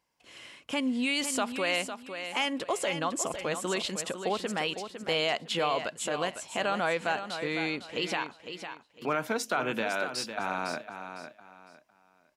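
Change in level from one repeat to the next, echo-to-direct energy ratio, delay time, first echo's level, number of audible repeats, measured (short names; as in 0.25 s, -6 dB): -11.5 dB, -8.5 dB, 0.505 s, -9.0 dB, 3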